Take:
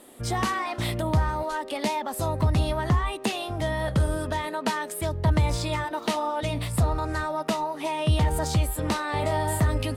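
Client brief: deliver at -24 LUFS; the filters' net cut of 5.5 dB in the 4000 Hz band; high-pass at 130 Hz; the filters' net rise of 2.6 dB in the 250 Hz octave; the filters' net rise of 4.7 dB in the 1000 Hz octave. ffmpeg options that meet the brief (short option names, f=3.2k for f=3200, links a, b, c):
-af "highpass=130,equalizer=f=250:t=o:g=4,equalizer=f=1k:t=o:g=5.5,equalizer=f=4k:t=o:g=-7.5,volume=2dB"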